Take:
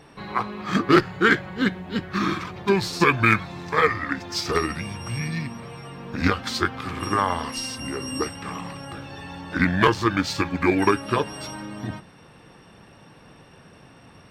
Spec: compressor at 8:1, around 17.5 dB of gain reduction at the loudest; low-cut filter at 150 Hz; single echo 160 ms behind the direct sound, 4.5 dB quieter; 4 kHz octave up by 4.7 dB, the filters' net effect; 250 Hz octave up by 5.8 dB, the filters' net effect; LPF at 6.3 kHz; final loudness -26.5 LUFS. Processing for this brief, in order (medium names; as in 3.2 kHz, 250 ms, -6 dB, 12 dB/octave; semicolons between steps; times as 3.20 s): high-pass 150 Hz; low-pass 6.3 kHz; peaking EQ 250 Hz +8.5 dB; peaking EQ 4 kHz +7 dB; compression 8:1, threshold -26 dBFS; delay 160 ms -4.5 dB; trim +3 dB